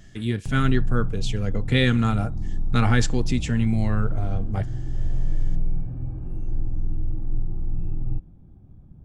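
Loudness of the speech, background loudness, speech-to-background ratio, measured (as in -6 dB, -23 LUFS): -24.5 LUFS, -32.0 LUFS, 7.5 dB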